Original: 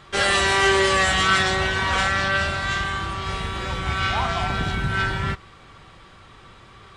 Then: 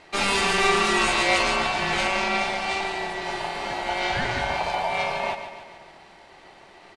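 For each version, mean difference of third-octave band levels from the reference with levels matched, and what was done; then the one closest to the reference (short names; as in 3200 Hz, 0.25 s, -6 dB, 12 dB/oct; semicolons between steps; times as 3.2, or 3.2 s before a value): 5.0 dB: ring modulator 790 Hz; on a send: feedback echo 0.143 s, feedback 55%, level -10 dB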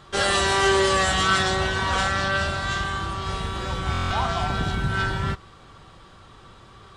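1.5 dB: bell 2200 Hz -7 dB 0.71 oct; stuck buffer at 3.92, samples 1024, times 7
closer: second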